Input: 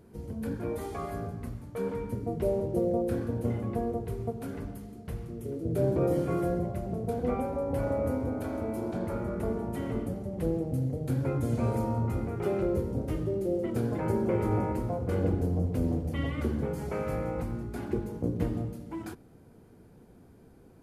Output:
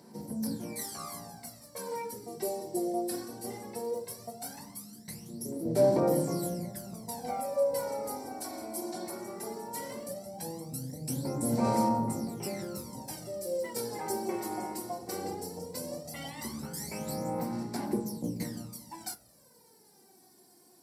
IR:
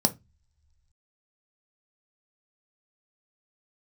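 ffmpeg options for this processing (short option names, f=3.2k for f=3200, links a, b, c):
-filter_complex "[0:a]aphaser=in_gain=1:out_gain=1:delay=2.8:decay=0.71:speed=0.17:type=sinusoidal,aderivative[a];[1:a]atrim=start_sample=2205[b];[a][b]afir=irnorm=-1:irlink=0,volume=1.5dB"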